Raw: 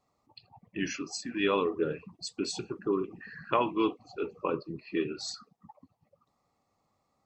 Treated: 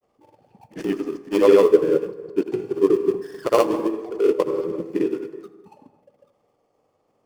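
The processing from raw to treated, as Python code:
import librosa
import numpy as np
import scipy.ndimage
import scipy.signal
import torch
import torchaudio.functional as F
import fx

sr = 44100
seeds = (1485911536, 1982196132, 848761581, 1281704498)

y = fx.dead_time(x, sr, dead_ms=0.18)
y = fx.peak_eq(y, sr, hz=450.0, db=14.5, octaves=1.3)
y = fx.notch(y, sr, hz=3900.0, q=7.8)
y = fx.rev_plate(y, sr, seeds[0], rt60_s=1.2, hf_ratio=0.55, predelay_ms=0, drr_db=9.5)
y = fx.granulator(y, sr, seeds[1], grain_ms=100.0, per_s=20.0, spray_ms=100.0, spread_st=0)
y = fx.echo_feedback(y, sr, ms=80, feedback_pct=59, wet_db=-21)
y = y * librosa.db_to_amplitude(3.0)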